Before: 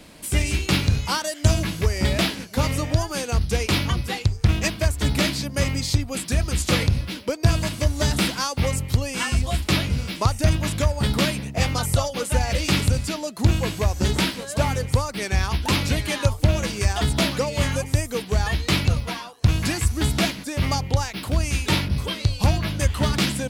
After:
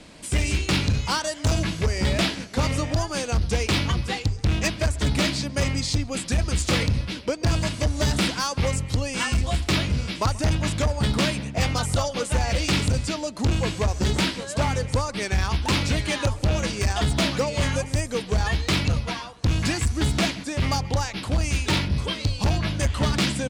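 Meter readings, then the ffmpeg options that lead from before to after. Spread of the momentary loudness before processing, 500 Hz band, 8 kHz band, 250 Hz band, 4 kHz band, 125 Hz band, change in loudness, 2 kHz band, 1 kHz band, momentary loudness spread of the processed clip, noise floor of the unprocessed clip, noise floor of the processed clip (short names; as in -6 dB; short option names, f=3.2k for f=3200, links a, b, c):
3 LU, -1.0 dB, -1.5 dB, -1.0 dB, -1.0 dB, -2.0 dB, -1.5 dB, -0.5 dB, -0.5 dB, 3 LU, -37 dBFS, -37 dBFS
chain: -filter_complex "[0:a]lowpass=f=9.1k:w=0.5412,lowpass=f=9.1k:w=1.3066,volume=16.5dB,asoftclip=hard,volume=-16.5dB,asplit=2[a][b];[b]adelay=133,lowpass=f=3.3k:p=1,volume=-21.5dB,asplit=2[c][d];[d]adelay=133,lowpass=f=3.3k:p=1,volume=0.52,asplit=2[e][f];[f]adelay=133,lowpass=f=3.3k:p=1,volume=0.52,asplit=2[g][h];[h]adelay=133,lowpass=f=3.3k:p=1,volume=0.52[i];[c][e][g][i]amix=inputs=4:normalize=0[j];[a][j]amix=inputs=2:normalize=0"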